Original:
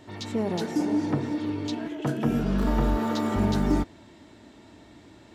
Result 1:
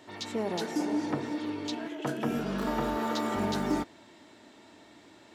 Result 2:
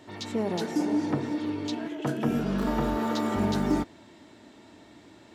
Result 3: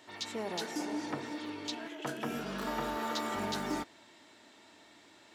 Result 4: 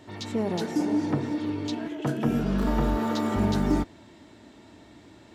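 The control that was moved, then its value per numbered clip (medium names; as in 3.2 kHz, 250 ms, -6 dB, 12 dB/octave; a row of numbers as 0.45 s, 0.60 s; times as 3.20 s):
high-pass, cutoff frequency: 430 Hz, 160 Hz, 1.2 kHz, 41 Hz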